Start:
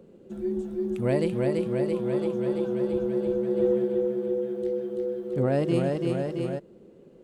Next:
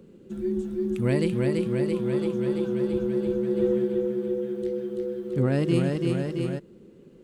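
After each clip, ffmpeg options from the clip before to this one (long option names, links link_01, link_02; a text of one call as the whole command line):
ffmpeg -i in.wav -af "equalizer=frequency=660:width=1.3:gain=-10.5,volume=4dB" out.wav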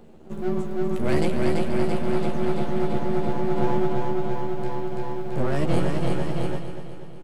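ffmpeg -i in.wav -filter_complex "[0:a]aeval=exprs='max(val(0),0)':channel_layout=same,asplit=2[link_01][link_02];[link_02]adelay=13,volume=-4.5dB[link_03];[link_01][link_03]amix=inputs=2:normalize=0,aecho=1:1:241|482|723|964|1205|1446|1687:0.335|0.188|0.105|0.0588|0.0329|0.0184|0.0103,volume=4.5dB" out.wav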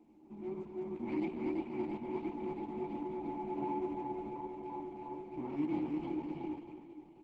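ffmpeg -i in.wav -filter_complex "[0:a]asplit=3[link_01][link_02][link_03];[link_01]bandpass=frequency=300:width_type=q:width=8,volume=0dB[link_04];[link_02]bandpass=frequency=870:width_type=q:width=8,volume=-6dB[link_05];[link_03]bandpass=frequency=2240:width_type=q:width=8,volume=-9dB[link_06];[link_04][link_05][link_06]amix=inputs=3:normalize=0,flanger=delay=2.9:depth=6.8:regen=67:speed=1.3:shape=sinusoidal,volume=3dB" -ar 48000 -c:a libopus -b:a 10k out.opus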